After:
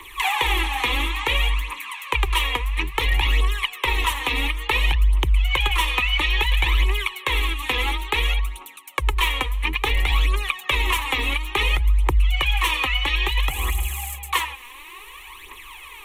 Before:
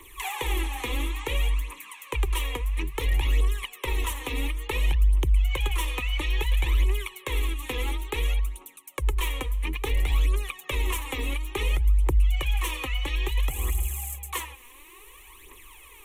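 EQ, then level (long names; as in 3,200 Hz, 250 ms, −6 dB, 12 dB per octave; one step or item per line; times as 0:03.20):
flat-topped bell 1,900 Hz +9 dB 3 octaves
+2.5 dB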